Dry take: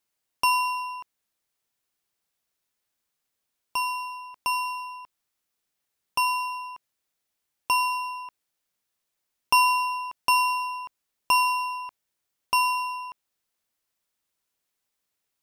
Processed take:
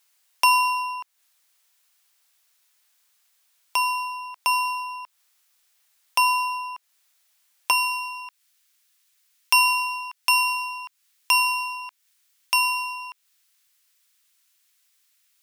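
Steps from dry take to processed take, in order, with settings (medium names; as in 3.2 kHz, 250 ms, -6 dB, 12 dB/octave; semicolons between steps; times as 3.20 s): high-pass 680 Hz 12 dB/octave, from 7.71 s 1.4 kHz; tape noise reduction on one side only encoder only; trim +5 dB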